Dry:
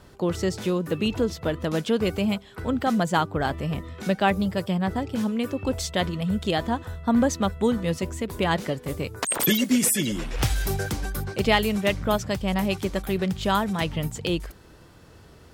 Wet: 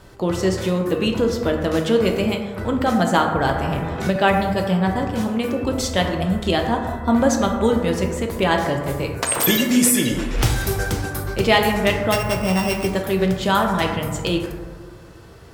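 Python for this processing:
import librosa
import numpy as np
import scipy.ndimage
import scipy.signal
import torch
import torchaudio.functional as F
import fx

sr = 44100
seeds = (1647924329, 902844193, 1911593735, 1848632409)

y = fx.sample_sort(x, sr, block=16, at=(12.12, 12.87))
y = fx.peak_eq(y, sr, hz=210.0, db=-3.0, octaves=0.73)
y = fx.rev_plate(y, sr, seeds[0], rt60_s=1.7, hf_ratio=0.3, predelay_ms=0, drr_db=2.0)
y = fx.band_squash(y, sr, depth_pct=70, at=(3.49, 4.16))
y = y * 10.0 ** (4.0 / 20.0)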